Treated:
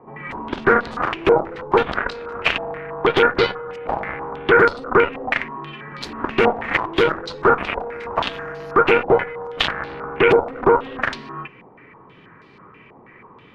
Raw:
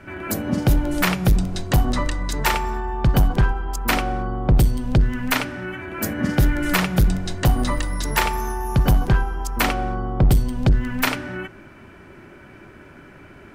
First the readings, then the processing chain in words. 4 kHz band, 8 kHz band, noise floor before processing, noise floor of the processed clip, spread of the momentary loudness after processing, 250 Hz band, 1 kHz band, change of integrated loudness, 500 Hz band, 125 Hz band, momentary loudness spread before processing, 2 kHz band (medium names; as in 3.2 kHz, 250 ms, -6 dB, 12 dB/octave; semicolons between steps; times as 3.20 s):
+2.0 dB, under -15 dB, -45 dBFS, -48 dBFS, 15 LU, -3.0 dB, +5.5 dB, +2.0 dB, +11.5 dB, -14.0 dB, 8 LU, +5.5 dB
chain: every band turned upside down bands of 500 Hz; Chebyshev shaper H 2 -12 dB, 4 -14 dB, 7 -12 dB, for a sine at -4.5 dBFS; step-sequenced low-pass 6.2 Hz 790–4300 Hz; trim -2.5 dB